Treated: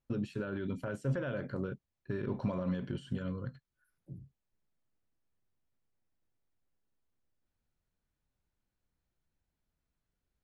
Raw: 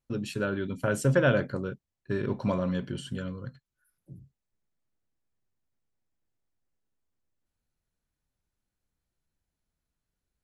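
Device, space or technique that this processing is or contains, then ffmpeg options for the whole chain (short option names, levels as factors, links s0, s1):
de-esser from a sidechain: -filter_complex "[0:a]asplit=2[s0][s1];[s1]highpass=f=6700:p=1,apad=whole_len=460296[s2];[s0][s2]sidechaincompress=threshold=0.00178:ratio=3:attack=1.4:release=55,lowpass=f=3300:p=1"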